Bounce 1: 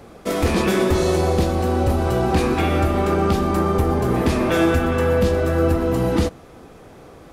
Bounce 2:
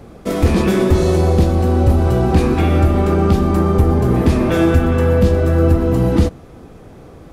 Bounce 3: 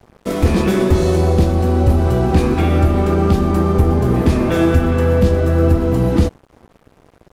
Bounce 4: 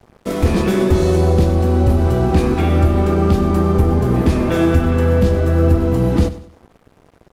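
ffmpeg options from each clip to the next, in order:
-af "lowshelf=f=330:g=9.5,volume=-1dB"
-af "aeval=exprs='sgn(val(0))*max(abs(val(0))-0.015,0)':c=same"
-af "aecho=1:1:97|194|291:0.178|0.0658|0.0243,volume=-1dB"

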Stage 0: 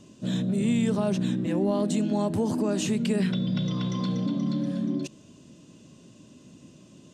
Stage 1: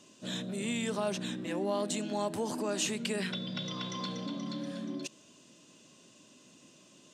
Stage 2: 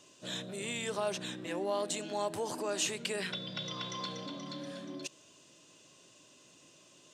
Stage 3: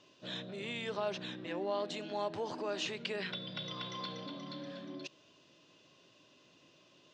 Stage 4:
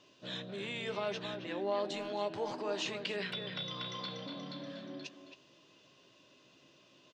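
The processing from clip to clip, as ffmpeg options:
-af "highpass=f=900:p=1,volume=1dB"
-af "equalizer=f=220:t=o:w=0.66:g=-11.5"
-af "lowpass=f=4.8k:w=0.5412,lowpass=f=4.8k:w=1.3066,volume=-2dB"
-filter_complex "[0:a]asplit=2[a][b];[b]adelay=15,volume=-11dB[c];[a][c]amix=inputs=2:normalize=0,asplit=2[d][e];[e]adelay=270,highpass=300,lowpass=3.4k,asoftclip=type=hard:threshold=-30.5dB,volume=-7dB[f];[d][f]amix=inputs=2:normalize=0"

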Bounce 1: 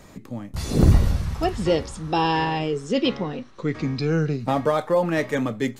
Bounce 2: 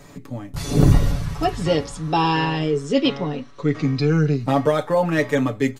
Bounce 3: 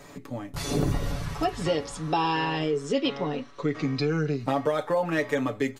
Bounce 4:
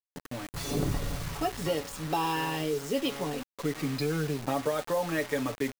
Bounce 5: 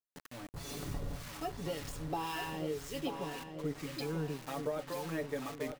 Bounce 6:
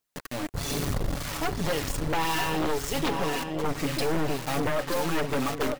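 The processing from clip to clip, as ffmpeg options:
-af "aecho=1:1:7:0.67,volume=1dB"
-af "bass=f=250:g=-7,treble=f=4k:g=-2,acompressor=threshold=-24dB:ratio=2.5"
-af "acrusher=bits=5:mix=0:aa=0.000001,volume=-4dB"
-filter_complex "[0:a]areverse,acompressor=mode=upward:threshold=-33dB:ratio=2.5,areverse,acrossover=split=1000[a][b];[a]aeval=exprs='val(0)*(1-0.7/2+0.7/2*cos(2*PI*1.9*n/s))':c=same[c];[b]aeval=exprs='val(0)*(1-0.7/2-0.7/2*cos(2*PI*1.9*n/s))':c=same[d];[c][d]amix=inputs=2:normalize=0,asplit=2[e][f];[f]adelay=937,lowpass=f=4.4k:p=1,volume=-7dB,asplit=2[g][h];[h]adelay=937,lowpass=f=4.4k:p=1,volume=0.42,asplit=2[i][j];[j]adelay=937,lowpass=f=4.4k:p=1,volume=0.42,asplit=2[k][l];[l]adelay=937,lowpass=f=4.4k:p=1,volume=0.42,asplit=2[m][n];[n]adelay=937,lowpass=f=4.4k:p=1,volume=0.42[o];[e][g][i][k][m][o]amix=inputs=6:normalize=0,volume=-5.5dB"
-af "aeval=exprs='0.0631*(cos(1*acos(clip(val(0)/0.0631,-1,1)))-cos(1*PI/2))+0.02*(cos(4*acos(clip(val(0)/0.0631,-1,1)))-cos(4*PI/2))':c=same,aphaser=in_gain=1:out_gain=1:delay=3.8:decay=0.24:speed=1.3:type=triangular,aeval=exprs='0.112*sin(PI/2*2.82*val(0)/0.112)':c=same"

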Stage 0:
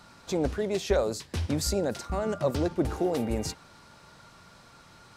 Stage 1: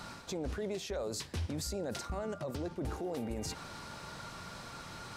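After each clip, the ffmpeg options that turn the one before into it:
-af "areverse,acompressor=threshold=-35dB:ratio=10,areverse,alimiter=level_in=12.5dB:limit=-24dB:level=0:latency=1:release=73,volume=-12.5dB,volume=7dB"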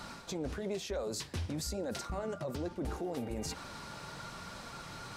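-af "flanger=delay=3.1:depth=4.5:regen=-58:speed=1.1:shape=triangular,volume=4.5dB"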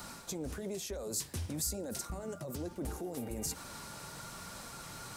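-filter_complex "[0:a]acrossover=split=420|5800[a][b][c];[b]alimiter=level_in=14.5dB:limit=-24dB:level=0:latency=1:release=89,volume=-14.5dB[d];[c]crystalizer=i=2.5:c=0[e];[a][d][e]amix=inputs=3:normalize=0,volume=-1.5dB"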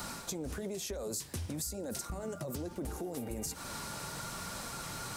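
-af "acompressor=threshold=-41dB:ratio=6,volume=5.5dB"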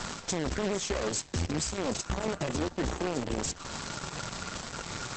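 -af "acrusher=bits=7:dc=4:mix=0:aa=0.000001,volume=8dB" -ar 48000 -c:a libopus -b:a 12k

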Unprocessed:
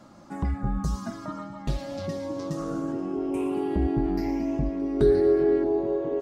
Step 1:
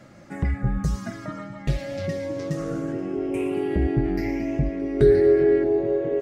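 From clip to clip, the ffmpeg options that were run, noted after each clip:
-af "equalizer=f=125:t=o:w=1:g=6,equalizer=f=250:t=o:w=1:g=-4,equalizer=f=500:t=o:w=1:g=5,equalizer=f=1k:t=o:w=1:g=-10,equalizer=f=2k:t=o:w=1:g=11,equalizer=f=4k:t=o:w=1:g=-3,volume=2dB"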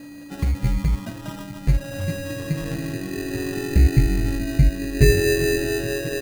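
-af "aeval=exprs='val(0)+0.0158*sin(2*PI*4700*n/s)':c=same,acrusher=samples=20:mix=1:aa=0.000001,asubboost=boost=4.5:cutoff=170,volume=-1dB"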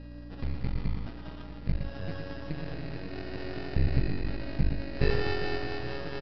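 -af "aresample=11025,aeval=exprs='max(val(0),0)':c=same,aresample=44100,aecho=1:1:114:0.473,aeval=exprs='val(0)+0.0158*(sin(2*PI*60*n/s)+sin(2*PI*2*60*n/s)/2+sin(2*PI*3*60*n/s)/3+sin(2*PI*4*60*n/s)/4+sin(2*PI*5*60*n/s)/5)':c=same,volume=-7.5dB"

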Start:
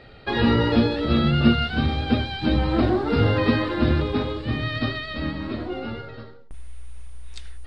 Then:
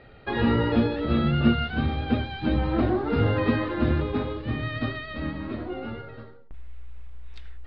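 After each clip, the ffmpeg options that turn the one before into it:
-af "lowpass=2.8k,volume=-3dB"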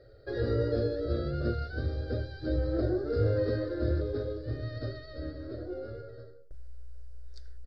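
-af "firequalizer=gain_entry='entry(120,0);entry(190,-23);entry(310,-2);entry(560,5);entry(890,-25);entry(1500,-4);entry(2600,-27);entry(4700,9);entry(6700,5)':delay=0.05:min_phase=1,volume=-4dB"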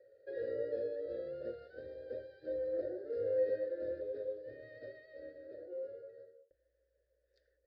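-filter_complex "[0:a]asplit=3[a][b][c];[a]bandpass=f=530:t=q:w=8,volume=0dB[d];[b]bandpass=f=1.84k:t=q:w=8,volume=-6dB[e];[c]bandpass=f=2.48k:t=q:w=8,volume=-9dB[f];[d][e][f]amix=inputs=3:normalize=0"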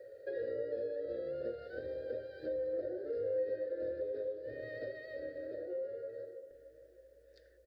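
-filter_complex "[0:a]acompressor=threshold=-52dB:ratio=2.5,asplit=2[a][b];[b]adelay=617,lowpass=f=1.9k:p=1,volume=-15dB,asplit=2[c][d];[d]adelay=617,lowpass=f=1.9k:p=1,volume=0.44,asplit=2[e][f];[f]adelay=617,lowpass=f=1.9k:p=1,volume=0.44,asplit=2[g][h];[h]adelay=617,lowpass=f=1.9k:p=1,volume=0.44[i];[a][c][e][g][i]amix=inputs=5:normalize=0,volume=11dB"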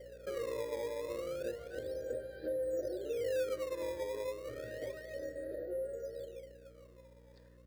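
-filter_complex "[0:a]aeval=exprs='val(0)+0.00112*(sin(2*PI*60*n/s)+sin(2*PI*2*60*n/s)/2+sin(2*PI*3*60*n/s)/3+sin(2*PI*4*60*n/s)/4+sin(2*PI*5*60*n/s)/5)':c=same,asplit=2[a][b];[b]acrusher=samples=17:mix=1:aa=0.000001:lfo=1:lforange=27.2:lforate=0.31,volume=-5dB[c];[a][c]amix=inputs=2:normalize=0,volume=-3dB"

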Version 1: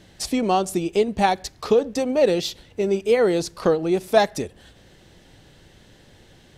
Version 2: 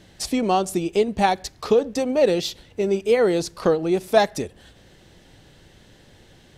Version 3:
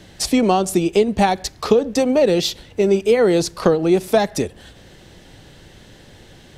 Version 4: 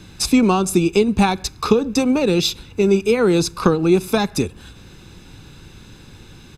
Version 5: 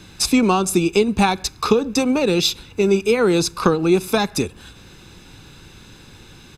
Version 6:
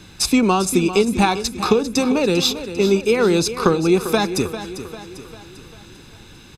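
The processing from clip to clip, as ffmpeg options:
-af anull
-filter_complex "[0:a]acrossover=split=280[a][b];[b]acompressor=threshold=-19dB:ratio=10[c];[a][c]amix=inputs=2:normalize=0,volume=6.5dB"
-af "aecho=1:1:0.8:0.67"
-af "lowshelf=f=350:g=-5,volume=1.5dB"
-af "aecho=1:1:397|794|1191|1588|1985:0.251|0.126|0.0628|0.0314|0.0157"

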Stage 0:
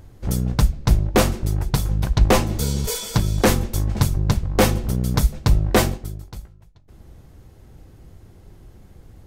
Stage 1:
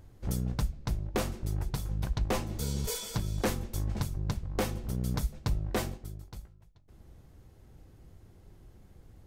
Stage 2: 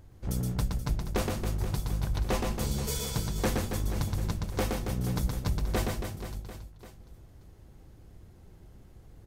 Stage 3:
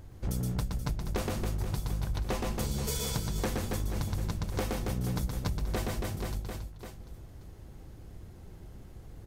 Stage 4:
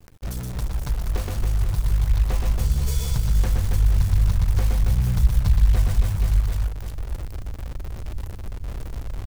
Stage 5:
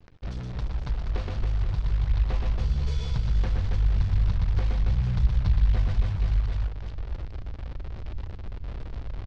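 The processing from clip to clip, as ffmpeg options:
-af "alimiter=limit=-12dB:level=0:latency=1:release=479,volume=-9dB"
-af "aecho=1:1:120|276|478.8|742.4|1085:0.631|0.398|0.251|0.158|0.1"
-af "acompressor=threshold=-33dB:ratio=6,volume=4.5dB"
-af "asubboost=boost=11:cutoff=93,acrusher=bits=7:dc=4:mix=0:aa=0.000001"
-filter_complex "[0:a]lowpass=f=4.6k:w=0.5412,lowpass=f=4.6k:w=1.3066,asplit=2[a][b];[b]aeval=exprs='clip(val(0),-1,0.126)':c=same,volume=-5dB[c];[a][c]amix=inputs=2:normalize=0,aecho=1:1:106:0.0891,volume=-7.5dB"

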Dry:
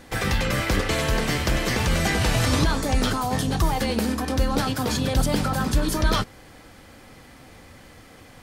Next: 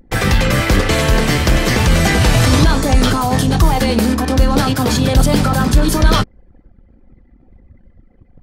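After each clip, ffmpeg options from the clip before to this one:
-af "anlmdn=1,lowshelf=f=340:g=3,acontrast=61,volume=2dB"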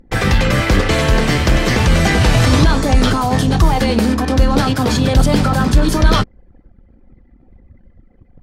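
-af "highshelf=f=10k:g=-11"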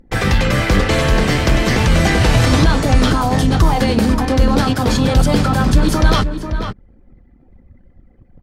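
-filter_complex "[0:a]asplit=2[a][b];[b]adelay=489.8,volume=-8dB,highshelf=f=4k:g=-11[c];[a][c]amix=inputs=2:normalize=0,volume=-1dB"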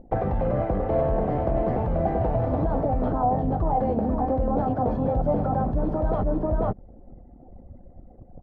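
-af "areverse,acompressor=threshold=-19dB:ratio=6,areverse,alimiter=limit=-17dB:level=0:latency=1:release=186,lowpass=f=700:t=q:w=3.6"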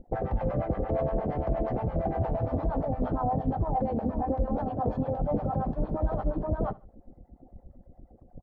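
-filter_complex "[0:a]acrossover=split=600[a][b];[a]aeval=exprs='val(0)*(1-1/2+1/2*cos(2*PI*8.6*n/s))':c=same[c];[b]aeval=exprs='val(0)*(1-1/2-1/2*cos(2*PI*8.6*n/s))':c=same[d];[c][d]amix=inputs=2:normalize=0,aecho=1:1:71|142:0.0794|0.0246"

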